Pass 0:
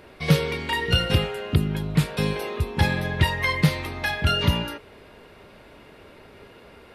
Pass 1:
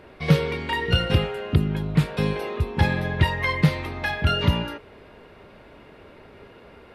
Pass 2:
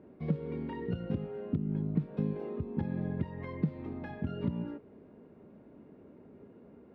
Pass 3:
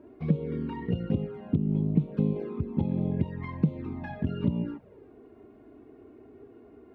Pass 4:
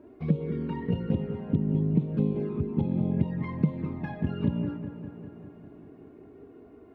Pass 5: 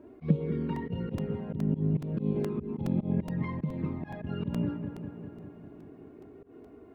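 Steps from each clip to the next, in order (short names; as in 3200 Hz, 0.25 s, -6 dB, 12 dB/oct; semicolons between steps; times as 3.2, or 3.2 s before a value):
high shelf 4300 Hz -10.5 dB; gain +1 dB
compressor 12:1, threshold -22 dBFS, peak gain reduction 12 dB; band-pass 230 Hz, Q 1.7
envelope flanger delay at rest 3.4 ms, full sweep at -29.5 dBFS; gain +6.5 dB
dark delay 0.199 s, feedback 69%, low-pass 2400 Hz, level -10 dB
auto swell 0.105 s; crackling interface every 0.42 s, samples 128, repeat, from 0.76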